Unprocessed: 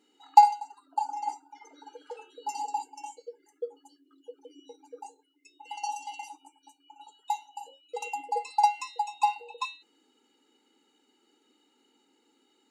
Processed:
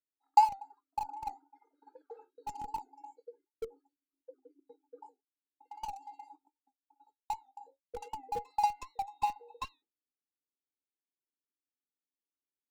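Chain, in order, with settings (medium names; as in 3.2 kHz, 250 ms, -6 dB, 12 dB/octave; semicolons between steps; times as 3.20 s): local Wiener filter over 15 samples; expander -45 dBFS; bass shelf 270 Hz +4.5 dB; in parallel at -6.5 dB: Schmitt trigger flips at -27.5 dBFS; on the sum: warped record 78 rpm, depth 100 cents; trim -7.5 dB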